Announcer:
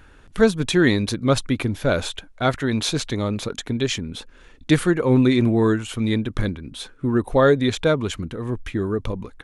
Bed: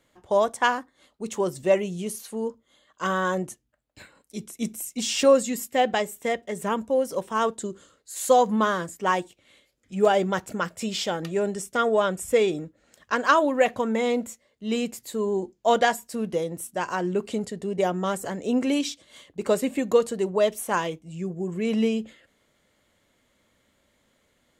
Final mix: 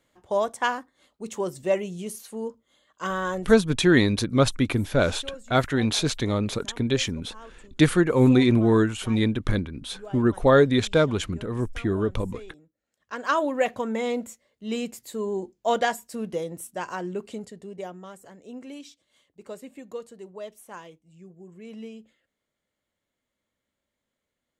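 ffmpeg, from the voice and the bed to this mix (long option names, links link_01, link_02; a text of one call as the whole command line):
ffmpeg -i stem1.wav -i stem2.wav -filter_complex "[0:a]adelay=3100,volume=-1dB[link_01];[1:a]volume=16dB,afade=type=out:start_time=3.36:duration=0.34:silence=0.112202,afade=type=in:start_time=12.98:duration=0.43:silence=0.112202,afade=type=out:start_time=16.62:duration=1.47:silence=0.211349[link_02];[link_01][link_02]amix=inputs=2:normalize=0" out.wav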